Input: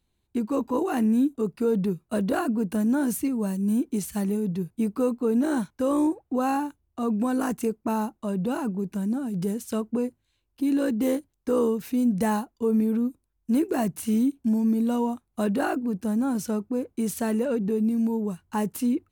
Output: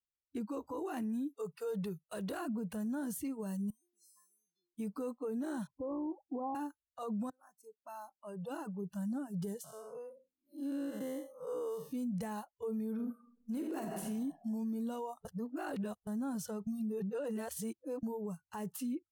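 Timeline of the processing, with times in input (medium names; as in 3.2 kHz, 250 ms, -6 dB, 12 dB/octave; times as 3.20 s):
1.29–2.41 s: tilt shelf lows -3 dB
3.70–4.74 s: feedback comb 350 Hz, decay 0.61 s, mix 100%
5.67–6.55 s: steep low-pass 1.1 kHz 96 dB/octave
7.30–9.12 s: fade in
9.64–11.93 s: spectral blur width 246 ms
12.92–14.05 s: reverb throw, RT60 1.4 s, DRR 1.5 dB
15.25–16.07 s: reverse
16.67–18.03 s: reverse
whole clip: spectral noise reduction 27 dB; peak limiter -24 dBFS; trim -8 dB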